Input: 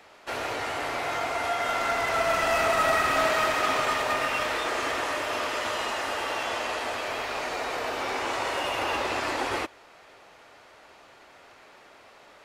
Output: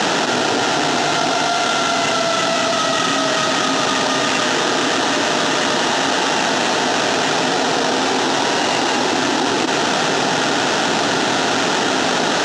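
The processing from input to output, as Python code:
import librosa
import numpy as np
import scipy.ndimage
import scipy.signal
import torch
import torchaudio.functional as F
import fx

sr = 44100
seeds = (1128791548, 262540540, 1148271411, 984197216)

y = fx.sample_hold(x, sr, seeds[0], rate_hz=4800.0, jitter_pct=20)
y = fx.cabinet(y, sr, low_hz=130.0, low_slope=24, high_hz=6700.0, hz=(160.0, 260.0, 560.0, 1100.0, 2200.0, 4900.0), db=(3, 6, -8, -9, -10, 4))
y = fx.env_flatten(y, sr, amount_pct=100)
y = F.gain(torch.from_numpy(y), 7.0).numpy()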